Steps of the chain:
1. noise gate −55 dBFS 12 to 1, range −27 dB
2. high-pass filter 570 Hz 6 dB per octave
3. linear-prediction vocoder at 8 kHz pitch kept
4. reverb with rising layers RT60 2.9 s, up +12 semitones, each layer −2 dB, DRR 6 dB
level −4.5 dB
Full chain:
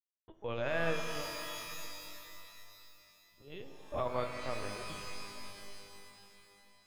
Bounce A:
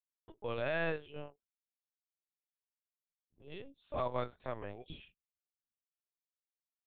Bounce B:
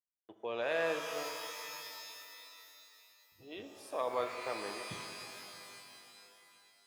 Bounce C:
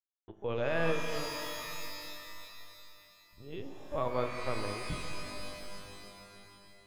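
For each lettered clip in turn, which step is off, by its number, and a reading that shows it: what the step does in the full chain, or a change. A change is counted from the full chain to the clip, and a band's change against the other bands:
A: 4, 4 kHz band −7.5 dB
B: 3, 125 Hz band −11.5 dB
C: 2, 250 Hz band +2.5 dB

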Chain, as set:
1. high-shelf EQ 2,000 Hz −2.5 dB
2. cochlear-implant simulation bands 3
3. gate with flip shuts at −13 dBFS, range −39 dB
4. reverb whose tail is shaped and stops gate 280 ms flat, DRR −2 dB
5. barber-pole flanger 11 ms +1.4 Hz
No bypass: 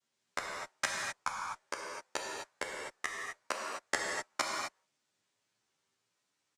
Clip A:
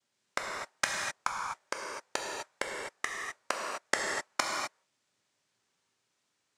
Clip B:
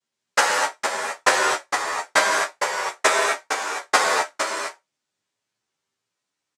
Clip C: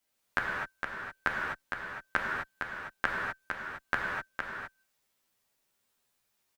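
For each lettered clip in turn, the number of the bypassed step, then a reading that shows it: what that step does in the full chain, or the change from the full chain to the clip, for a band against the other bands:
5, change in crest factor +3.0 dB
3, change in crest factor −8.5 dB
2, 8 kHz band −21.0 dB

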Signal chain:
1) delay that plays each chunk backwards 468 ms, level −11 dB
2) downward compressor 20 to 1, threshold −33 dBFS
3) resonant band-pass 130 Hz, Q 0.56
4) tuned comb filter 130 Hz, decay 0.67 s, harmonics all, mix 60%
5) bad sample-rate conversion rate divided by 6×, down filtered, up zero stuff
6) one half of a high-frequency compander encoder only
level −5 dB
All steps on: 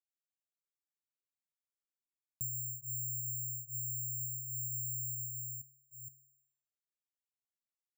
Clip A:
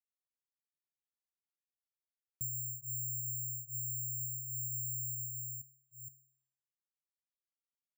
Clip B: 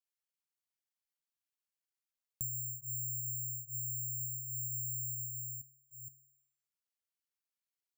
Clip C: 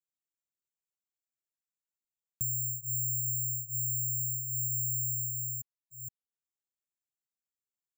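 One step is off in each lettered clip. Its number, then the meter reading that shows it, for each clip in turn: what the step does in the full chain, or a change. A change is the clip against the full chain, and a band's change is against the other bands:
6, change in crest factor −1.5 dB
3, change in crest factor +2.0 dB
4, change in integrated loudness +6.5 LU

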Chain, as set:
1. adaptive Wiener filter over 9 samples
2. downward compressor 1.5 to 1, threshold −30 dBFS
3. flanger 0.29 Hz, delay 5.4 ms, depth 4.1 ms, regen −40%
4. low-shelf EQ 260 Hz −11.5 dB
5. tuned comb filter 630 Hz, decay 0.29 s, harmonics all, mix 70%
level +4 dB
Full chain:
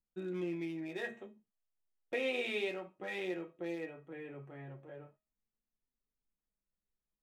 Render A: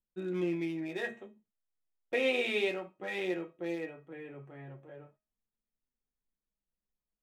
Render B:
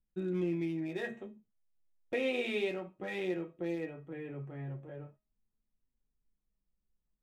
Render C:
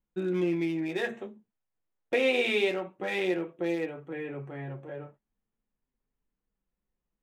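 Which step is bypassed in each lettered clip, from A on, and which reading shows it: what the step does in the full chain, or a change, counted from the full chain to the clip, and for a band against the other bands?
2, average gain reduction 3.0 dB
4, 125 Hz band +7.0 dB
5, change in integrated loudness +9.5 LU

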